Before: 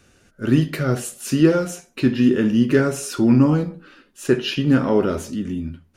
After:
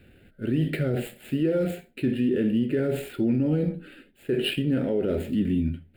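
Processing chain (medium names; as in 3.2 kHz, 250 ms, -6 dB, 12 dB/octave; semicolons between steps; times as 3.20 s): median filter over 9 samples; dynamic bell 490 Hz, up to +6 dB, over -30 dBFS, Q 1.5; reverse; compression 4:1, threshold -22 dBFS, peak gain reduction 13 dB; reverse; peak limiter -18.5 dBFS, peak gain reduction 6 dB; static phaser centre 2.6 kHz, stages 4; trim +3.5 dB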